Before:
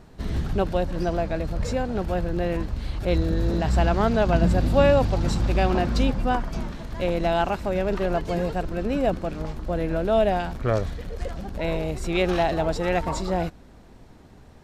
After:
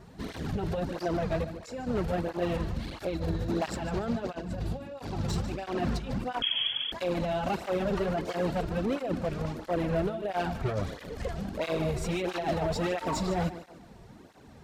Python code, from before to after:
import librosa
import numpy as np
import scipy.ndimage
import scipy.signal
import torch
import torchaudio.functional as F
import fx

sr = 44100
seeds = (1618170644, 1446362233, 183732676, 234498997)

y = fx.hum_notches(x, sr, base_hz=60, count=2)
y = fx.over_compress(y, sr, threshold_db=-24.0, ratio=-0.5)
y = fx.comb_fb(y, sr, f0_hz=370.0, decay_s=0.54, harmonics='all', damping=0.0, mix_pct=70, at=(1.44, 1.87))
y = np.clip(10.0 ** (22.0 / 20.0) * y, -1.0, 1.0) / 10.0 ** (22.0 / 20.0)
y = fx.echo_feedback(y, sr, ms=148, feedback_pct=36, wet_db=-13.0)
y = fx.freq_invert(y, sr, carrier_hz=3300, at=(6.42, 6.92))
y = fx.flanger_cancel(y, sr, hz=1.5, depth_ms=4.1)